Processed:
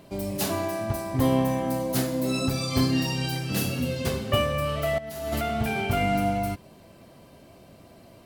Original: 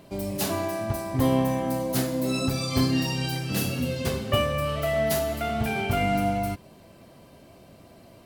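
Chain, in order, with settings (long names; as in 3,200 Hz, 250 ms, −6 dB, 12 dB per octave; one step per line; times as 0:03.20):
0:04.98–0:05.41: compressor whose output falls as the input rises −30 dBFS, ratio −0.5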